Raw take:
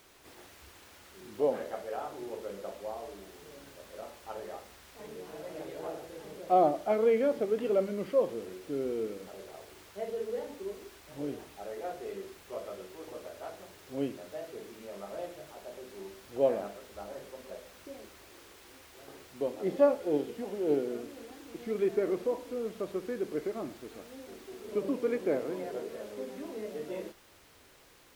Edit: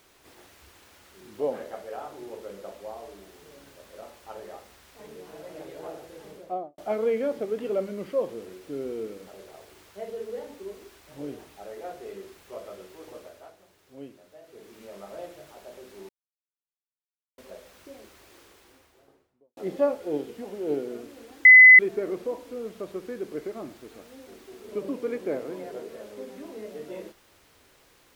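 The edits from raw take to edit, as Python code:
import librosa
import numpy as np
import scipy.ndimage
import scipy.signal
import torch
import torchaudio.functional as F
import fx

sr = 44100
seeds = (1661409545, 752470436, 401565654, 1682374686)

y = fx.studio_fade_out(x, sr, start_s=6.28, length_s=0.5)
y = fx.studio_fade_out(y, sr, start_s=18.35, length_s=1.22)
y = fx.edit(y, sr, fx.fade_down_up(start_s=13.16, length_s=1.66, db=-9.5, fade_s=0.39),
    fx.silence(start_s=16.09, length_s=1.29),
    fx.bleep(start_s=21.45, length_s=0.34, hz=2020.0, db=-7.0), tone=tone)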